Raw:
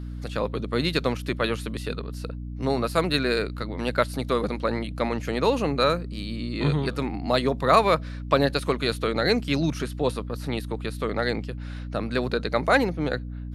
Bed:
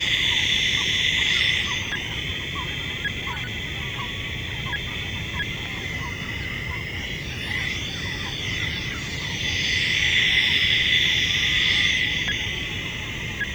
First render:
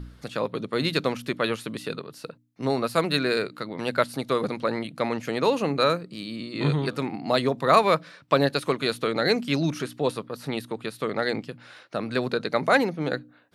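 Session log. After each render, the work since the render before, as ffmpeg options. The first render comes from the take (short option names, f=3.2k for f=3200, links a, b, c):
-af "bandreject=f=60:t=h:w=4,bandreject=f=120:t=h:w=4,bandreject=f=180:t=h:w=4,bandreject=f=240:t=h:w=4,bandreject=f=300:t=h:w=4"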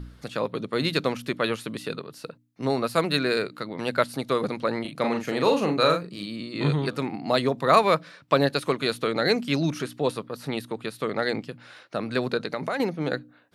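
-filter_complex "[0:a]asettb=1/sr,asplit=3[a][b][c];[a]atrim=end=4.814[d];[b]atrim=start=4.81:end=6.26,asetpts=PTS-STARTPTS,afade=t=in:d=0.004:c=qsin,afade=t=out:st=1.446:d=0.004:c=qsin,asplit=2[e][f];[f]adelay=39,volume=-5dB[g];[e][g]amix=inputs=2:normalize=0,atrim=end_sample=63945[h];[c]atrim=start=6.256[i];[d][h]acrossfade=d=0.004:c1=hsin:c2=qsin[j];[j][i]acrossfade=d=0.004:c1=qsin:c2=hsin,asettb=1/sr,asplit=3[k][l][m];[k]atrim=end=12.374[n];[l]atrim=start=12.37:end=12.8,asetpts=PTS-STARTPTS,afade=t=in:d=0.004:c=qsin,afade=t=out:st=0.426:d=0.004:c=qsin,acompressor=threshold=-24dB:ratio=6:attack=3.2:release=140:knee=1:detection=peak[o];[m]atrim=start=12.796[p];[n][o]acrossfade=d=0.004:c1=hsin:c2=qsin[q];[q][p]acrossfade=d=0.004:c1=qsin:c2=hsin"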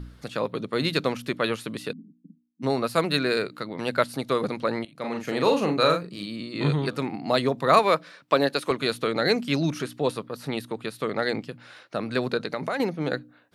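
-filter_complex "[0:a]asplit=3[a][b][c];[a]afade=t=out:st=1.91:d=0.02[d];[b]asuperpass=centerf=220:order=8:qfactor=1.9,afade=t=in:st=1.91:d=0.02,afade=t=out:st=2.62:d=0.02[e];[c]afade=t=in:st=2.62:d=0.02[f];[d][e][f]amix=inputs=3:normalize=0,asettb=1/sr,asplit=3[g][h][i];[g]atrim=end=7.794[j];[h]atrim=start=7.79:end=8.71,asetpts=PTS-STARTPTS,afade=t=in:d=0.004:c=qsin,afade=t=out:st=0.916:d=0.004:c=qsin,highpass=210[k];[i]atrim=start=8.706[l];[j][k]acrossfade=d=0.004:c1=hsin:c2=qsin[m];[m][l]acrossfade=d=0.004:c1=qsin:c2=hsin,asplit=2[n][o];[n]atrim=end=4.85,asetpts=PTS-STARTPTS,afade=t=out:st=4.846:d=0.004:c=hsin:silence=0.112202[p];[o]atrim=start=4.85,asetpts=PTS-STARTPTS,afade=t=in:d=0.5:silence=0.112202[q];[p][q]concat=n=2:v=0:a=1"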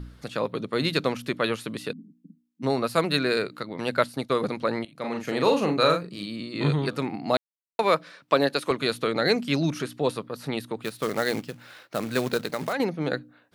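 -filter_complex "[0:a]asettb=1/sr,asplit=3[a][b][c];[a]atrim=end=3.634[d];[b]atrim=start=3.63:end=4.61,asetpts=PTS-STARTPTS,afade=t=in:d=0.004:c=qsin,afade=t=out:st=0.976:d=0.004:c=qsin,agate=range=-33dB:threshold=-35dB:ratio=3:release=100:detection=peak[e];[c]atrim=start=4.606[f];[d][e]acrossfade=d=0.004:c1=hsin:c2=qsin[g];[g][f]acrossfade=d=0.004:c1=qsin:c2=hsin,asplit=3[h][i][j];[h]afade=t=out:st=10.82:d=0.02[k];[i]acrusher=bits=3:mode=log:mix=0:aa=0.000001,afade=t=in:st=10.82:d=0.02,afade=t=out:st=12.72:d=0.02[l];[j]afade=t=in:st=12.72:d=0.02[m];[k][l][m]amix=inputs=3:normalize=0,asplit=3[n][o][p];[n]atrim=end=7.37,asetpts=PTS-STARTPTS,afade=t=out:st=7.366:d=0.004:c=hsin[q];[o]atrim=start=7.37:end=7.79,asetpts=PTS-STARTPTS,volume=0[r];[p]atrim=start=7.79,asetpts=PTS-STARTPTS,afade=t=in:d=0.004:c=hsin[s];[q][r][s]concat=n=3:v=0:a=1"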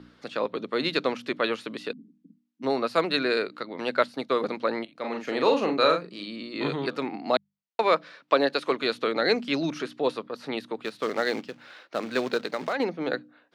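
-filter_complex "[0:a]acrossover=split=200 6100:gain=0.0794 1 0.126[a][b][c];[a][b][c]amix=inputs=3:normalize=0,bandreject=f=50:t=h:w=6,bandreject=f=100:t=h:w=6,bandreject=f=150:t=h:w=6,bandreject=f=200:t=h:w=6"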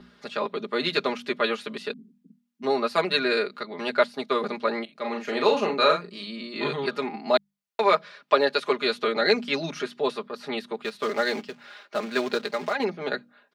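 -af "lowshelf=f=330:g=-4.5,aecho=1:1:4.9:0.87"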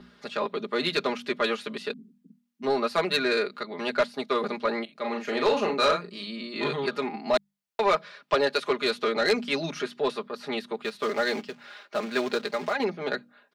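-af "asoftclip=type=tanh:threshold=-15dB"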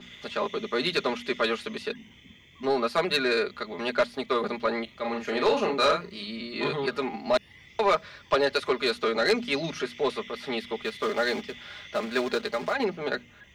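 -filter_complex "[1:a]volume=-26dB[a];[0:a][a]amix=inputs=2:normalize=0"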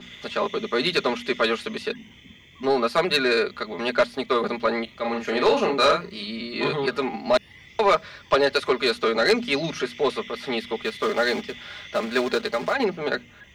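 -af "volume=4dB"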